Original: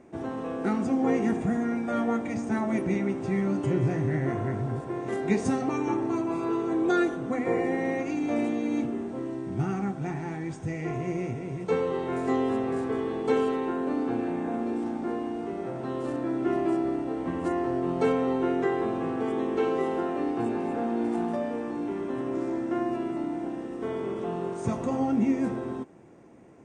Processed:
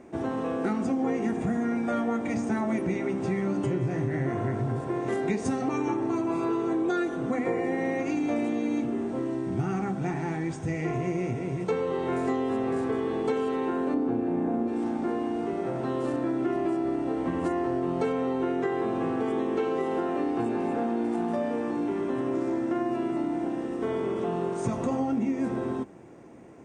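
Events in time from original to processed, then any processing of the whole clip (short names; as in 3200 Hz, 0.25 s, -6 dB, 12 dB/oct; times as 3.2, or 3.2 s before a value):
13.94–14.68 tilt shelf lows +6.5 dB, about 1100 Hz
whole clip: notches 50/100/150/200 Hz; compressor, threshold -28 dBFS; gain +4 dB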